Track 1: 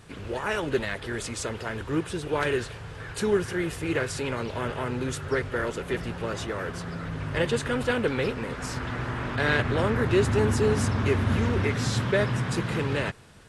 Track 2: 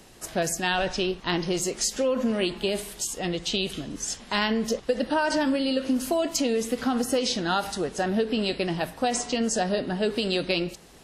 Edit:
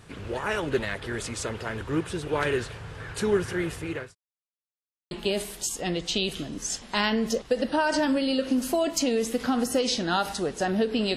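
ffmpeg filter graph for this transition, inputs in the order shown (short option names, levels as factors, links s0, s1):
-filter_complex "[0:a]apad=whole_dur=11.16,atrim=end=11.16,asplit=2[s0][s1];[s0]atrim=end=4.15,asetpts=PTS-STARTPTS,afade=t=out:st=3.52:d=0.63:c=qsin[s2];[s1]atrim=start=4.15:end=5.11,asetpts=PTS-STARTPTS,volume=0[s3];[1:a]atrim=start=2.49:end=8.54,asetpts=PTS-STARTPTS,afade=t=in:d=0.004:c=hsin[s4];[s2][s3][s4]concat=n=3:v=0:a=1"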